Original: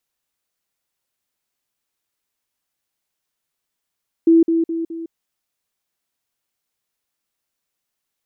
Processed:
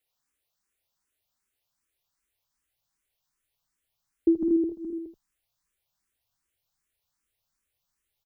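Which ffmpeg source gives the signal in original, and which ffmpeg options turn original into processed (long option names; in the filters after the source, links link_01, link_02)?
-f lavfi -i "aevalsrc='pow(10,(-8-6*floor(t/0.21))/20)*sin(2*PI*330*t)*clip(min(mod(t,0.21),0.16-mod(t,0.21))/0.005,0,1)':duration=0.84:sample_rate=44100"
-filter_complex "[0:a]asubboost=boost=4:cutoff=120,asplit=2[link_01][link_02];[link_02]aecho=0:1:80:0.501[link_03];[link_01][link_03]amix=inputs=2:normalize=0,asplit=2[link_04][link_05];[link_05]afreqshift=2.6[link_06];[link_04][link_06]amix=inputs=2:normalize=1"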